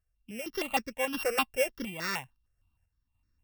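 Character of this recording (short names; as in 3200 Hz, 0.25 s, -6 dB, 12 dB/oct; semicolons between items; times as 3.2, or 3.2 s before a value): a buzz of ramps at a fixed pitch in blocks of 16 samples; random-step tremolo; notches that jump at a steady rate 6.5 Hz 930–3000 Hz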